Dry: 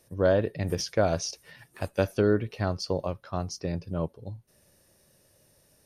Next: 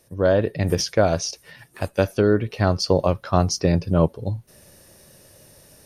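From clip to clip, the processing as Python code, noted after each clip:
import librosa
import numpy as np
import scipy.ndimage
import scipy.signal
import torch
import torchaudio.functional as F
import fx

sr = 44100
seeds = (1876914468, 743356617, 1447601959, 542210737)

y = fx.rider(x, sr, range_db=10, speed_s=0.5)
y = y * 10.0 ** (8.0 / 20.0)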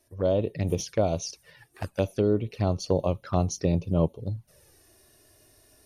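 y = fx.env_flanger(x, sr, rest_ms=3.1, full_db=-18.5)
y = y * 10.0 ** (-5.0 / 20.0)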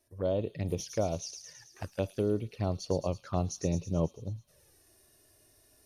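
y = fx.echo_wet_highpass(x, sr, ms=109, feedback_pct=63, hz=5300.0, wet_db=-3)
y = y * 10.0 ** (-6.0 / 20.0)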